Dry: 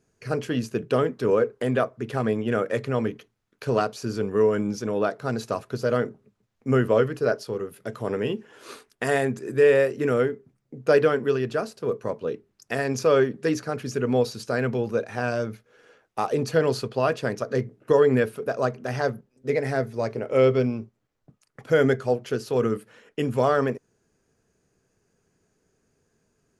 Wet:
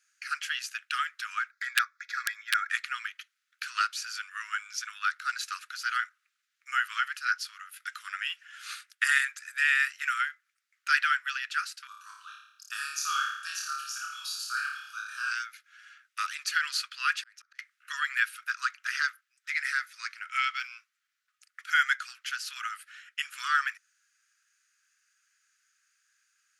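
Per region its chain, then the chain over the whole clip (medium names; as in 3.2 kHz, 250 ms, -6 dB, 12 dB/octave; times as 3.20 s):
1.51–2.69 s: static phaser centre 2.9 kHz, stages 6 + comb 3.6 ms, depth 46% + integer overflow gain 15 dB
11.87–15.31 s: peaking EQ 5.7 kHz -3.5 dB 1.5 oct + static phaser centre 540 Hz, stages 6 + flutter echo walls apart 4.8 m, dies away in 0.75 s
17.19–17.59 s: compression, threshold -27 dBFS + slow attack 628 ms
whole clip: steep high-pass 1.3 kHz 72 dB/octave; treble shelf 9.2 kHz -5 dB; trim +6 dB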